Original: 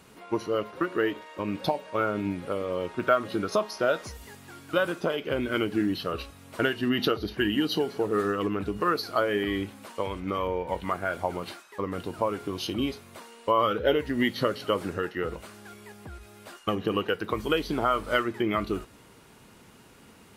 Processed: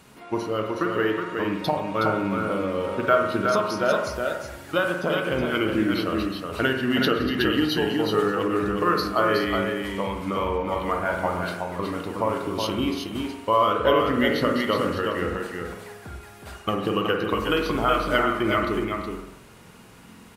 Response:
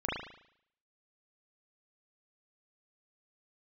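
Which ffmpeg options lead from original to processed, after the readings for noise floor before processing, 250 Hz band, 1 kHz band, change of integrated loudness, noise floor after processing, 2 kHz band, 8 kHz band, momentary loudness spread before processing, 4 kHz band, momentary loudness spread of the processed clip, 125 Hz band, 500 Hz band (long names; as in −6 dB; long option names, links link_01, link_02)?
−54 dBFS, +4.5 dB, +5.5 dB, +4.0 dB, −47 dBFS, +5.5 dB, +4.0 dB, 12 LU, +4.0 dB, 9 LU, +5.0 dB, +4.0 dB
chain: -filter_complex "[0:a]equalizer=frequency=430:width=1.5:gain=-2.5,aecho=1:1:369:0.596,asplit=2[link_01][link_02];[1:a]atrim=start_sample=2205,asetrate=34839,aresample=44100[link_03];[link_02][link_03]afir=irnorm=-1:irlink=0,volume=-9.5dB[link_04];[link_01][link_04]amix=inputs=2:normalize=0"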